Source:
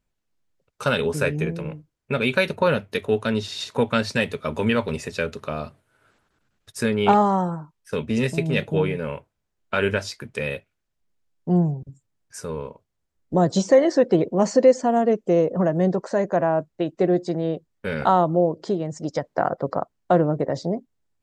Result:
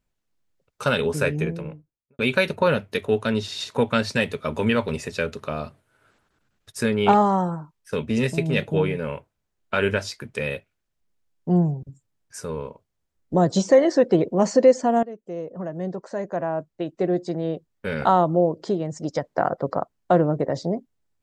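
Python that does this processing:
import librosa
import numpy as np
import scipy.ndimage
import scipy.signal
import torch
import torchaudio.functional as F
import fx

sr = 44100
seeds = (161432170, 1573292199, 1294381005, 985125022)

y = fx.studio_fade_out(x, sr, start_s=1.38, length_s=0.81)
y = fx.edit(y, sr, fx.fade_in_from(start_s=15.03, length_s=3.04, floor_db=-18.5), tone=tone)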